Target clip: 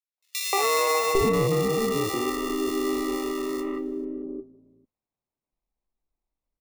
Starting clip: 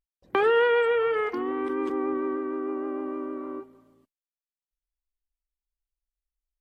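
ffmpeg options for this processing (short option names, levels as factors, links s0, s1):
-filter_complex "[0:a]acrusher=samples=28:mix=1:aa=0.000001,volume=6.31,asoftclip=hard,volume=0.158,acrossover=split=490|2500[s0][s1][s2];[s1]adelay=180[s3];[s0]adelay=800[s4];[s4][s3][s2]amix=inputs=3:normalize=0,volume=1.5"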